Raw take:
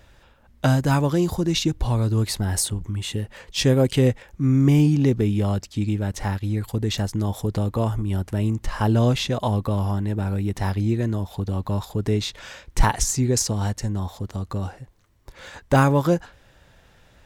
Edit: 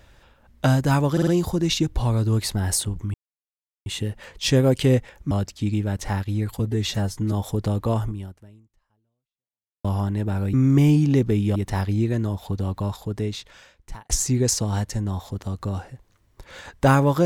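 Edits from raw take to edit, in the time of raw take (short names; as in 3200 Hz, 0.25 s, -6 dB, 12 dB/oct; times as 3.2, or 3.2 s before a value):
1.12 stutter 0.05 s, 4 plays
2.99 insert silence 0.72 s
4.44–5.46 move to 10.44
6.74–7.23 stretch 1.5×
7.95–9.75 fade out exponential
11.52–12.98 fade out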